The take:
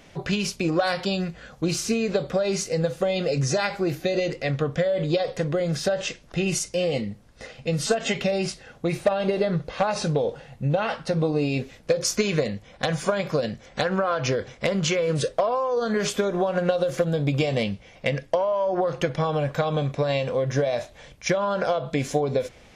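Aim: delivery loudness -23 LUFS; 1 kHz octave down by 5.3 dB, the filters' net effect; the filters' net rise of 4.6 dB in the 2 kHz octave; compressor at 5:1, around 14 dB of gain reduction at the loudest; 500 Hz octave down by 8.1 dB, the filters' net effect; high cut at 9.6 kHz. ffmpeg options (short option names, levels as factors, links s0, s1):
-af "lowpass=9600,equalizer=f=500:t=o:g=-8.5,equalizer=f=1000:t=o:g=-6,equalizer=f=2000:t=o:g=8,acompressor=threshold=0.0178:ratio=5,volume=5.31"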